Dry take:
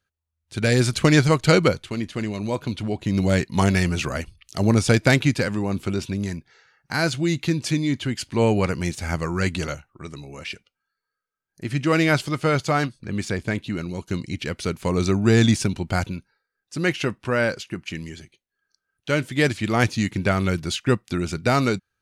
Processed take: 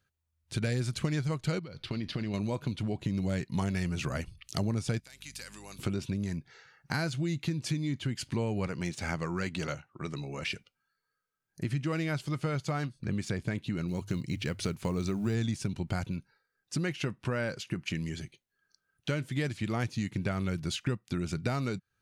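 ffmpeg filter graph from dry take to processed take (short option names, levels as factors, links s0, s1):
-filter_complex "[0:a]asettb=1/sr,asplit=3[s0][s1][s2];[s0]atrim=end=1.594[s3];[s1]atrim=start=1.59:end=2.34,asetpts=PTS-STARTPTS,afade=t=in:d=0.004:c=qsin,afade=t=out:st=0.746:d=0.004:c=qsin,highshelf=f=5900:t=q:w=3:g=-6.5,acompressor=threshold=0.0355:ratio=16:attack=3.2:release=140:knee=1:detection=peak[s4];[s2]atrim=start=2.336[s5];[s3][s4]acrossfade=d=0.004:c1=hsin:c2=qsin[s6];[s6][s5]acrossfade=d=0.004:c1=qsin:c2=hsin,asettb=1/sr,asplit=3[s7][s8][s9];[s7]atrim=end=5.004[s10];[s8]atrim=start=5:end=5.79,asetpts=PTS-STARTPTS,afade=t=in:d=0.004:c=qsin,afade=t=out:st=0.786:d=0.004:c=qsin,aderivative,acompressor=threshold=0.0126:ratio=10:attack=3.2:release=140:knee=1:detection=peak,aeval=exprs='val(0)+0.00141*(sin(2*PI*50*n/s)+sin(2*PI*2*50*n/s)/2+sin(2*PI*3*50*n/s)/3+sin(2*PI*4*50*n/s)/4+sin(2*PI*5*50*n/s)/5)':c=same[s11];[s9]atrim=start=5.786[s12];[s10][s11]acrossfade=d=0.004:c1=hsin:c2=qsin[s13];[s13][s12]acrossfade=d=0.004:c1=qsin:c2=hsin,asettb=1/sr,asplit=3[s14][s15][s16];[s14]atrim=end=8.684[s17];[s15]atrim=start=8.68:end=10.43,asetpts=PTS-STARTPTS,afade=t=in:d=0.004:c=qsin,afade=t=out:st=1.746:d=0.004:c=qsin,highpass=f=220:p=1,adynamicsmooth=sensitivity=5.5:basefreq=7500[s18];[s16]atrim=start=10.426[s19];[s17][s18]acrossfade=d=0.004:c1=hsin:c2=qsin[s20];[s20][s19]acrossfade=d=0.004:c1=qsin:c2=hsin,asettb=1/sr,asplit=3[s21][s22][s23];[s21]atrim=end=13.884[s24];[s22]atrim=start=13.88:end=15.35,asetpts=PTS-STARTPTS,afade=t=in:d=0.004:c=qsin,afade=t=out:st=1.466:d=0.004:c=qsin,bandreject=f=50:t=h:w=6,bandreject=f=100:t=h:w=6,acrusher=bits=8:mode=log:mix=0:aa=0.000001[s25];[s23]atrim=start=15.346[s26];[s24][s25]acrossfade=d=0.004:c1=hsin:c2=qsin[s27];[s27][s26]acrossfade=d=0.004:c1=qsin:c2=hsin,equalizer=f=140:t=o:w=1.1:g=6.5,acompressor=threshold=0.0316:ratio=5"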